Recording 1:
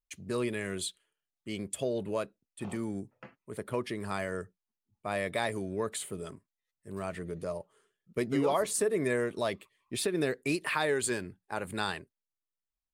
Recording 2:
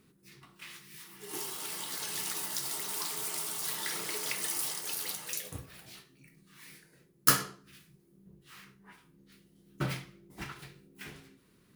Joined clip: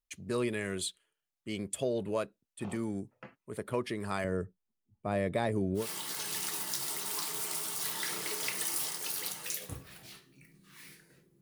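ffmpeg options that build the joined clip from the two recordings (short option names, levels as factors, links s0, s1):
-filter_complex "[0:a]asettb=1/sr,asplit=3[s0][s1][s2];[s0]atrim=end=4.244[s3];[s1]atrim=start=4.24:end=5.88,asetpts=PTS-STARTPTS,afade=t=in:d=0.004:c=qsin,afade=t=out:st=1.636:d=0.004:c=qsin,tiltshelf=f=700:g=7[s4];[s2]atrim=start=5.876[s5];[s3][s4]acrossfade=d=0.004:c1=hsin:c2=qsin[s6];[s6][s5]acrossfade=d=0.004:c1=qsin:c2=hsin,apad=whole_dur=11.41,atrim=end=11.41,atrim=end=5.88,asetpts=PTS-STARTPTS[s7];[1:a]atrim=start=1.57:end=7.24,asetpts=PTS-STARTPTS[s8];[s7][s8]acrossfade=d=0.14:c1=tri:c2=tri"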